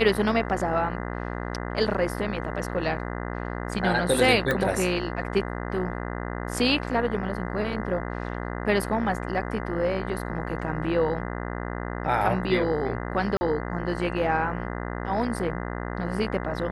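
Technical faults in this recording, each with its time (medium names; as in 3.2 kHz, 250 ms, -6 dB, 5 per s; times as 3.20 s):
buzz 60 Hz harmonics 34 -32 dBFS
4.51 s: pop -12 dBFS
13.37–13.41 s: dropout 40 ms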